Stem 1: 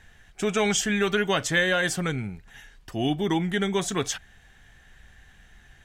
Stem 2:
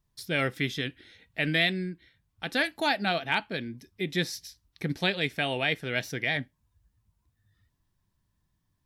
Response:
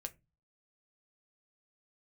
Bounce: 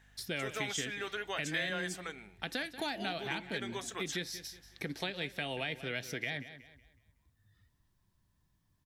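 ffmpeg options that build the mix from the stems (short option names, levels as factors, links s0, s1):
-filter_complex "[0:a]highpass=490,aeval=exprs='val(0)+0.002*(sin(2*PI*50*n/s)+sin(2*PI*2*50*n/s)/2+sin(2*PI*3*50*n/s)/3+sin(2*PI*4*50*n/s)/4+sin(2*PI*5*50*n/s)/5)':c=same,volume=0.316[s0];[1:a]acrossover=split=310|2700[s1][s2][s3];[s1]acompressor=threshold=0.00708:ratio=4[s4];[s2]acompressor=threshold=0.0158:ratio=4[s5];[s3]acompressor=threshold=0.0112:ratio=4[s6];[s4][s5][s6]amix=inputs=3:normalize=0,volume=1.06,asplit=2[s7][s8];[s8]volume=0.168,aecho=0:1:185|370|555|740|925:1|0.33|0.109|0.0359|0.0119[s9];[s0][s7][s9]amix=inputs=3:normalize=0,acompressor=threshold=0.0126:ratio=1.5"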